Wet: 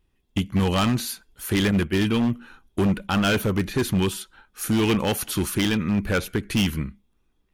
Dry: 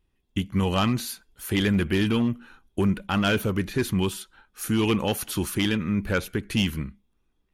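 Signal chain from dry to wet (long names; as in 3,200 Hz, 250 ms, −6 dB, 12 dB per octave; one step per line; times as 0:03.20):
0:01.71–0:02.22: downward expander −20 dBFS
wave folding −18 dBFS
level +3 dB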